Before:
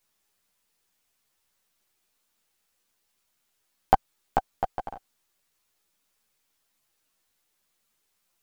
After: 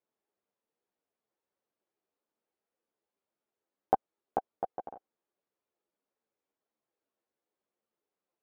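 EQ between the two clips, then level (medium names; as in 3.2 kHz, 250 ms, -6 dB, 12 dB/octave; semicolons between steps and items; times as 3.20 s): band-pass filter 430 Hz, Q 1.3; -1.5 dB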